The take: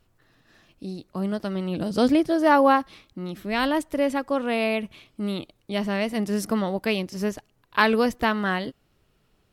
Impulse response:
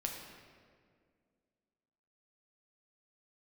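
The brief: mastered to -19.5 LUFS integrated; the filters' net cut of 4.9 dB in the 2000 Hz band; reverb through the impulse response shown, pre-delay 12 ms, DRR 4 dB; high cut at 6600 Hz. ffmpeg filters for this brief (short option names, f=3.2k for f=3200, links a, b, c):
-filter_complex "[0:a]lowpass=6.6k,equalizer=f=2k:t=o:g=-6.5,asplit=2[a][b];[1:a]atrim=start_sample=2205,adelay=12[c];[b][c]afir=irnorm=-1:irlink=0,volume=-5dB[d];[a][d]amix=inputs=2:normalize=0,volume=4.5dB"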